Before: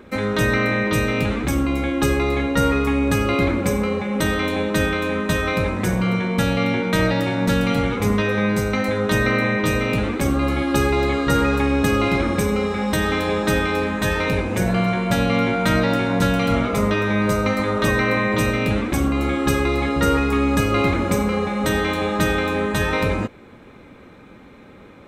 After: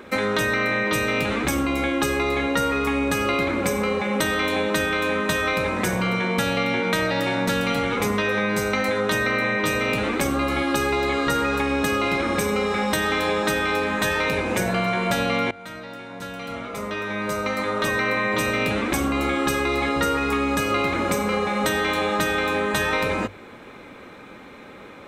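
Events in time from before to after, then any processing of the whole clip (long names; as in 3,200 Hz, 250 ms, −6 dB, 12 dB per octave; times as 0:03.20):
0:15.51–0:18.72: fade in quadratic, from −22 dB
whole clip: low-shelf EQ 290 Hz −11 dB; downward compressor, threshold −25 dBFS; mains-hum notches 50/100 Hz; level +6 dB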